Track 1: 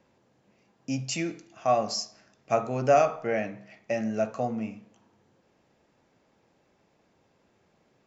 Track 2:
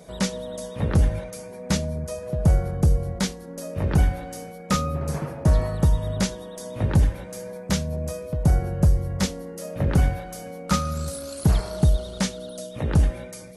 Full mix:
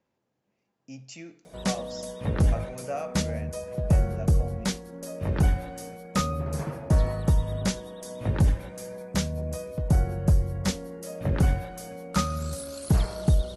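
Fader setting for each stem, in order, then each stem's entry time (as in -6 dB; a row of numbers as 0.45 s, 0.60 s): -12.5 dB, -3.0 dB; 0.00 s, 1.45 s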